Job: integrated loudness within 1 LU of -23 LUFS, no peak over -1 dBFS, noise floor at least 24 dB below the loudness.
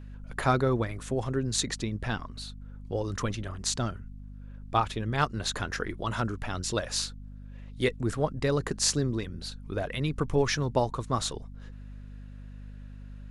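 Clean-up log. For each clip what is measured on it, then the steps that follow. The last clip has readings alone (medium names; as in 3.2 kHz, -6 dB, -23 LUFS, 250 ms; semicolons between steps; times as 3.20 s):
hum 50 Hz; highest harmonic 250 Hz; hum level -41 dBFS; loudness -30.0 LUFS; peak level -9.5 dBFS; loudness target -23.0 LUFS
-> de-hum 50 Hz, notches 5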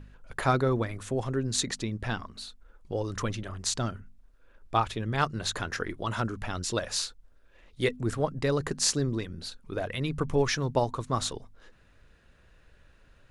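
hum not found; loudness -30.5 LUFS; peak level -9.5 dBFS; loudness target -23.0 LUFS
-> trim +7.5 dB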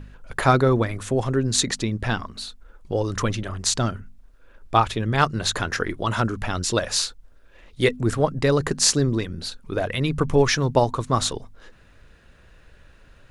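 loudness -23.0 LUFS; peak level -2.0 dBFS; noise floor -52 dBFS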